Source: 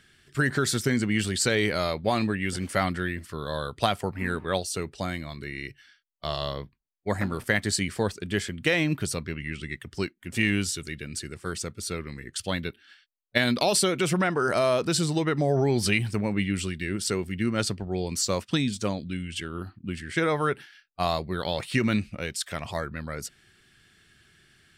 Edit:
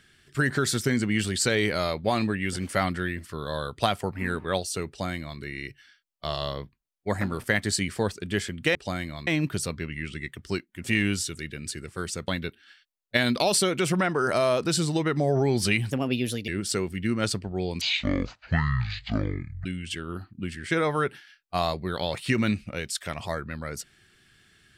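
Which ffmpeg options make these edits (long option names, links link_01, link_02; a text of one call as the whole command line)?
ffmpeg -i in.wav -filter_complex "[0:a]asplit=8[link_01][link_02][link_03][link_04][link_05][link_06][link_07][link_08];[link_01]atrim=end=8.752[link_09];[link_02]atrim=start=4.878:end=5.402[link_10];[link_03]atrim=start=8.748:end=11.762[link_11];[link_04]atrim=start=12.488:end=16.124[link_12];[link_05]atrim=start=16.12:end=16.84,asetpts=PTS-STARTPTS,asetrate=55566,aresample=44100[link_13];[link_06]atrim=start=16.836:end=18.174[link_14];[link_07]atrim=start=18.17:end=19.11,asetpts=PTS-STARTPTS,asetrate=22491,aresample=44100,atrim=end_sample=81282,asetpts=PTS-STARTPTS[link_15];[link_08]atrim=start=19.106[link_16];[link_09][link_10]acrossfade=duration=0.004:curve1=hsin:curve2=hsin[link_17];[link_17][link_11]acrossfade=duration=0.004:curve1=hsin:curve2=hsin[link_18];[link_18][link_12]acrossfade=duration=0.004:curve1=hsin:curve2=hsin[link_19];[link_19][link_13]acrossfade=duration=0.004:curve1=hsin:curve2=hsin[link_20];[link_20][link_14]acrossfade=duration=0.004:curve1=hsin:curve2=hsin[link_21];[link_21][link_15]acrossfade=duration=0.004:curve1=hsin:curve2=hsin[link_22];[link_22][link_16]acrossfade=duration=0.004:curve1=hsin:curve2=hsin" out.wav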